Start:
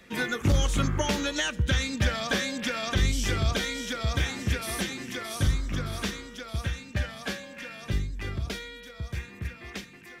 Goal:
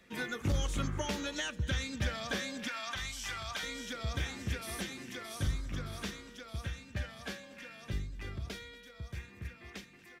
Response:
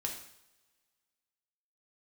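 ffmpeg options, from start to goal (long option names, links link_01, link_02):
-filter_complex "[0:a]asettb=1/sr,asplit=3[link_01][link_02][link_03];[link_01]atrim=end=2.684[link_04];[link_02]atrim=start=2.68:end=3.63,asetpts=PTS-STARTPTS,afade=type=in:duration=0.004:curve=qsin,afade=type=out:start_time=0.946:duration=0.004:curve=qsin,lowshelf=frequency=600:width_type=q:width=1.5:gain=-13[link_05];[link_03]atrim=start=3.626[link_06];[link_04][link_05]acrossfade=duration=0.004:curve1=hsin:curve2=qsin[link_07];[link_07][link_06]acrossfade=duration=0.004:curve1=qsin:curve2=hsin,aecho=1:1:235:0.0944,volume=-8.5dB"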